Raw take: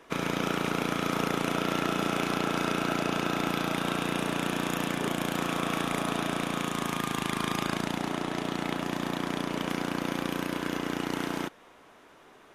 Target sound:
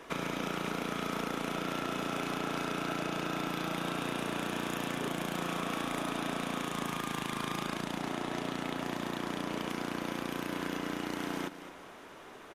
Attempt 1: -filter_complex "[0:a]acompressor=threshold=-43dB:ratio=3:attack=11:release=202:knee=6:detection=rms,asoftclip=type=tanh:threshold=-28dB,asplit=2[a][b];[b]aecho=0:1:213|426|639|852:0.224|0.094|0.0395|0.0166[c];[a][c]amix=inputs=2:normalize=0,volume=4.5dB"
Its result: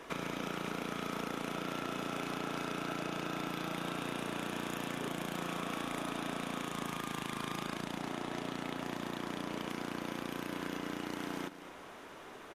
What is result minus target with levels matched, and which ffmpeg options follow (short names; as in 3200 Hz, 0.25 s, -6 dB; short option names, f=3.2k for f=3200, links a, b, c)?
compressor: peak gain reduction +4 dB
-filter_complex "[0:a]acompressor=threshold=-37dB:ratio=3:attack=11:release=202:knee=6:detection=rms,asoftclip=type=tanh:threshold=-28dB,asplit=2[a][b];[b]aecho=0:1:213|426|639|852:0.224|0.094|0.0395|0.0166[c];[a][c]amix=inputs=2:normalize=0,volume=4.5dB"